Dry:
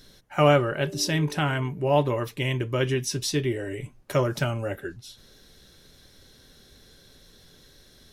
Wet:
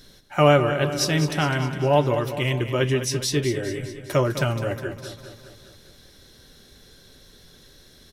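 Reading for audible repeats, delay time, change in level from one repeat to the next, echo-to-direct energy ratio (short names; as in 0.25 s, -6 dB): 6, 0.204 s, -4.5 dB, -9.0 dB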